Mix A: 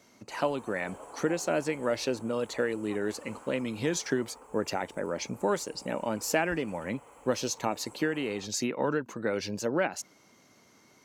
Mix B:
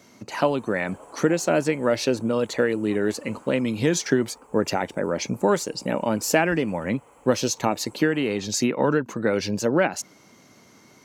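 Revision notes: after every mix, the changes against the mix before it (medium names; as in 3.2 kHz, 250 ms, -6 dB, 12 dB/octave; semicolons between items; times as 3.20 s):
speech +6.5 dB; master: add peaking EQ 150 Hz +3.5 dB 2.2 oct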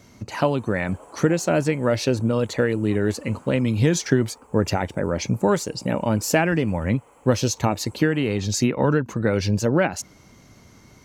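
speech: remove high-pass 210 Hz 12 dB/octave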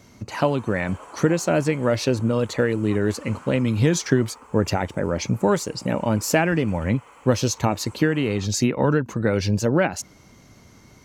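background: add high-order bell 2.5 kHz +9.5 dB 2.9 oct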